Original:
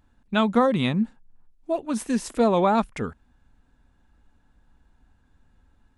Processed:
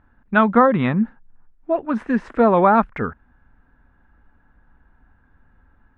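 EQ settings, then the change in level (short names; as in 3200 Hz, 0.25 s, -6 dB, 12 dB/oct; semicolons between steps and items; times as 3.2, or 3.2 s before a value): synth low-pass 1600 Hz, resonance Q 2.1; +4.0 dB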